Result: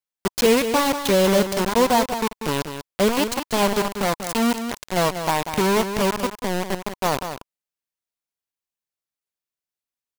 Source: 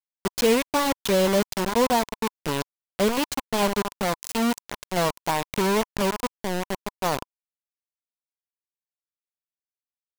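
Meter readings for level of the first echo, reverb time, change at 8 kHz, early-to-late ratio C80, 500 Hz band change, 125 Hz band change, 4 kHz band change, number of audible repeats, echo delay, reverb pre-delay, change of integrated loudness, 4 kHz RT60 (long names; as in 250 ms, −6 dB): −9.0 dB, no reverb audible, +3.5 dB, no reverb audible, +3.5 dB, +3.5 dB, +3.5 dB, 1, 190 ms, no reverb audible, +3.5 dB, no reverb audible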